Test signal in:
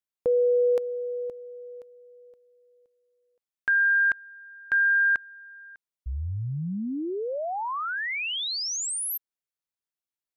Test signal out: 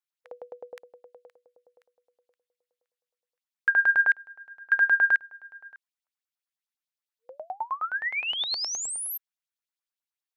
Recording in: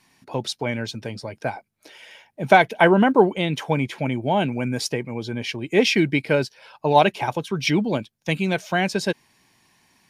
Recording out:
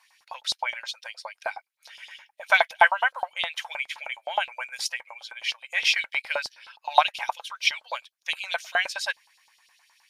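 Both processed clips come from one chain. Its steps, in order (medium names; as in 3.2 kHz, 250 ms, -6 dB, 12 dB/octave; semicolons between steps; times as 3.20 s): brick-wall FIR high-pass 490 Hz; LFO high-pass saw up 9.6 Hz 760–4700 Hz; trim -3 dB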